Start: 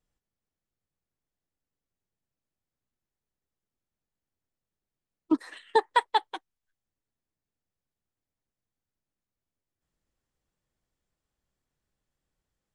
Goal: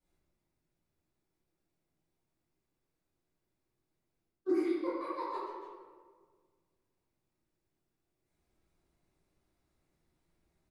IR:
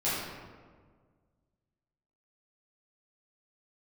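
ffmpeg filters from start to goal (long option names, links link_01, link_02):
-filter_complex "[0:a]bandreject=frequency=91.56:width_type=h:width=4,bandreject=frequency=183.12:width_type=h:width=4,bandreject=frequency=274.68:width_type=h:width=4,bandreject=frequency=366.24:width_type=h:width=4,bandreject=frequency=457.8:width_type=h:width=4,bandreject=frequency=549.36:width_type=h:width=4,bandreject=frequency=640.92:width_type=h:width=4,bandreject=frequency=732.48:width_type=h:width=4,bandreject=frequency=824.04:width_type=h:width=4,bandreject=frequency=915.6:width_type=h:width=4,asetrate=52479,aresample=44100,areverse,acompressor=threshold=-36dB:ratio=16,areverse,equalizer=frequency=340:width_type=o:width=0.23:gain=9,bandreject=frequency=3100:width=27,asplit=2[link_01][link_02];[link_02]adelay=290,highpass=300,lowpass=3400,asoftclip=type=hard:threshold=-37.5dB,volume=-20dB[link_03];[link_01][link_03]amix=inputs=2:normalize=0,acrossover=split=1100[link_04][link_05];[link_05]alimiter=level_in=23dB:limit=-24dB:level=0:latency=1:release=11,volume=-23dB[link_06];[link_04][link_06]amix=inputs=2:normalize=0[link_07];[1:a]atrim=start_sample=2205[link_08];[link_07][link_08]afir=irnorm=-1:irlink=0,volume=-4.5dB"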